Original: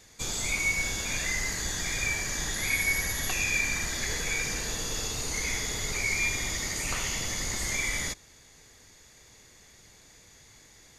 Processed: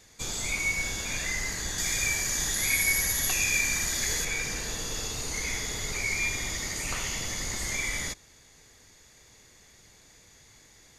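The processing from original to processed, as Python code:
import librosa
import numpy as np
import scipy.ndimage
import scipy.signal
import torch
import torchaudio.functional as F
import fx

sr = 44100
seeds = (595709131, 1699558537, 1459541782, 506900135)

y = fx.high_shelf(x, sr, hz=5600.0, db=10.0, at=(1.78, 4.25))
y = F.gain(torch.from_numpy(y), -1.0).numpy()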